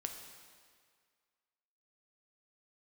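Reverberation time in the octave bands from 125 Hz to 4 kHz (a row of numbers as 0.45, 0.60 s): 1.7, 1.7, 1.9, 2.0, 1.9, 1.7 s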